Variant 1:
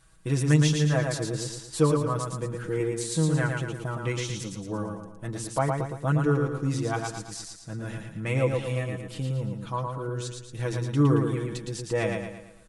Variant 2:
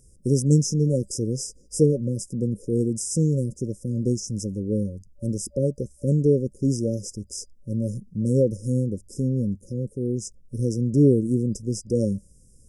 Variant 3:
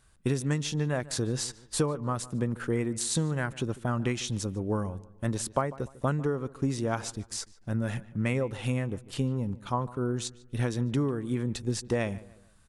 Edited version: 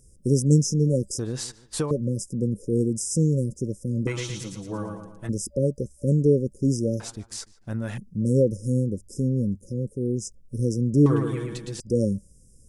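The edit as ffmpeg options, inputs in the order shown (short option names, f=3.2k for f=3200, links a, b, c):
-filter_complex "[2:a]asplit=2[a][b];[0:a]asplit=2[c][d];[1:a]asplit=5[e][f][g][h][i];[e]atrim=end=1.192[j];[a]atrim=start=1.188:end=1.912[k];[f]atrim=start=1.908:end=4.072[l];[c]atrim=start=4.068:end=5.292[m];[g]atrim=start=5.288:end=7.002[n];[b]atrim=start=6.998:end=7.982[o];[h]atrim=start=7.978:end=11.062[p];[d]atrim=start=11.058:end=11.802[q];[i]atrim=start=11.798[r];[j][k]acrossfade=d=0.004:c1=hsin:c2=hsin[s];[s][l]acrossfade=d=0.004:c1=hsin:c2=hsin[t];[t][m]acrossfade=d=0.004:c1=hsin:c2=hsin[u];[u][n]acrossfade=d=0.004:c1=hsin:c2=hsin[v];[v][o]acrossfade=d=0.004:c1=hsin:c2=hsin[w];[w][p]acrossfade=d=0.004:c1=hsin:c2=hsin[x];[x][q]acrossfade=d=0.004:c1=hsin:c2=hsin[y];[y][r]acrossfade=d=0.004:c1=hsin:c2=hsin"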